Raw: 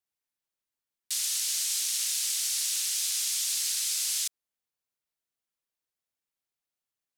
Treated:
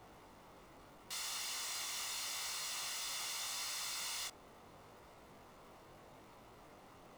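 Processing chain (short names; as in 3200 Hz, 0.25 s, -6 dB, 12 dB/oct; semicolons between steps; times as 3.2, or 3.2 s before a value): polynomial smoothing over 65 samples; power-law curve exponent 0.35; chorus 0.78 Hz, delay 18 ms, depth 4.3 ms; gain +8 dB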